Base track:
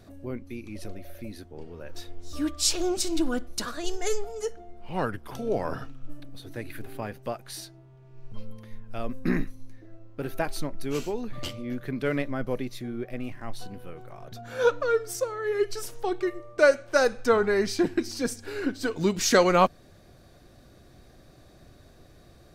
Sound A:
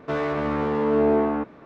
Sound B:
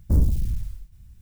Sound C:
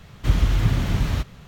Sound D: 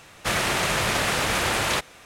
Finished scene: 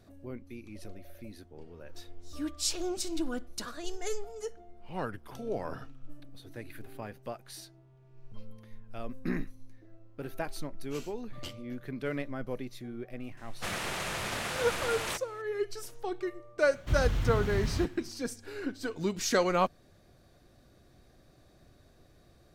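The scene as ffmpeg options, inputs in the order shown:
ffmpeg -i bed.wav -i cue0.wav -i cue1.wav -i cue2.wav -i cue3.wav -filter_complex "[0:a]volume=-7dB[link_01];[4:a]atrim=end=2.05,asetpts=PTS-STARTPTS,volume=-11.5dB,afade=type=in:duration=0.004:curve=hsin,afade=type=out:start_time=2.046:duration=0.004:curve=hsin,adelay=13370[link_02];[3:a]atrim=end=1.47,asetpts=PTS-STARTPTS,volume=-10dB,afade=type=in:duration=0.004:curve=hsin,afade=type=out:start_time=1.466:duration=0.004:curve=hsin,adelay=16630[link_03];[link_01][link_02][link_03]amix=inputs=3:normalize=0" out.wav

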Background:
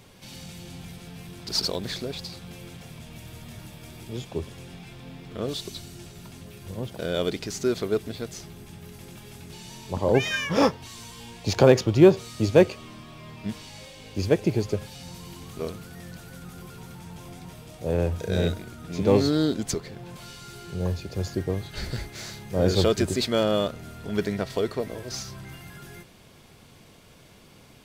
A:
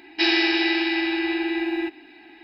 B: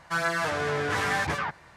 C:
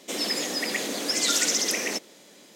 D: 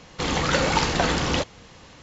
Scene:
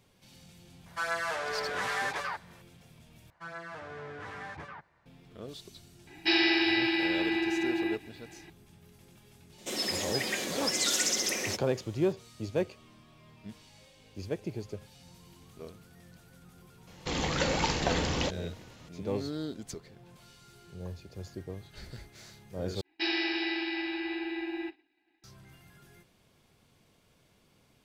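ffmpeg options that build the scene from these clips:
ffmpeg -i bed.wav -i cue0.wav -i cue1.wav -i cue2.wav -i cue3.wav -filter_complex "[2:a]asplit=2[link_01][link_02];[1:a]asplit=2[link_03][link_04];[0:a]volume=-13.5dB[link_05];[link_01]highpass=frequency=420:width=0.5412,highpass=frequency=420:width=1.3066[link_06];[link_02]lowpass=frequency=2400:poles=1[link_07];[3:a]aecho=1:1:5.4:0.32[link_08];[4:a]equalizer=frequency=1300:width=2.2:gain=-5[link_09];[link_04]agate=range=-33dB:threshold=-38dB:ratio=3:release=100:detection=peak[link_10];[link_05]asplit=3[link_11][link_12][link_13];[link_11]atrim=end=3.304[link_14];[link_07]atrim=end=1.76,asetpts=PTS-STARTPTS,volume=-14.5dB[link_15];[link_12]atrim=start=5.056:end=22.814[link_16];[link_10]atrim=end=2.43,asetpts=PTS-STARTPTS,volume=-10.5dB[link_17];[link_13]atrim=start=25.236[link_18];[link_06]atrim=end=1.76,asetpts=PTS-STARTPTS,volume=-5dB,afade=type=in:duration=0.004:curve=hsin,afade=type=out:start_time=1.756:duration=0.004:curve=hsin,adelay=860[link_19];[link_03]atrim=end=2.43,asetpts=PTS-STARTPTS,volume=-5dB,afade=type=in:duration=0.004:curve=hsin,afade=type=out:start_time=2.426:duration=0.004:curve=hsin,adelay=6070[link_20];[link_08]atrim=end=2.55,asetpts=PTS-STARTPTS,volume=-5dB,afade=type=in:duration=0.004:curve=hsin,afade=type=out:start_time=2.546:duration=0.004:curve=hsin,adelay=9580[link_21];[link_09]atrim=end=2.02,asetpts=PTS-STARTPTS,volume=-6.5dB,afade=type=in:duration=0.004:curve=hsin,afade=type=out:start_time=2.016:duration=0.004:curve=hsin,adelay=16870[link_22];[link_14][link_15]acrossfade=duration=0.004:curve1=hsin:curve2=hsin[link_23];[link_23][link_16]acrossfade=duration=0.004:curve1=hsin:curve2=hsin[link_24];[link_24][link_17]acrossfade=duration=0.004:curve1=hsin:curve2=hsin[link_25];[link_25][link_18]acrossfade=duration=0.004:curve1=hsin:curve2=hsin[link_26];[link_26][link_19][link_20][link_21][link_22]amix=inputs=5:normalize=0" out.wav

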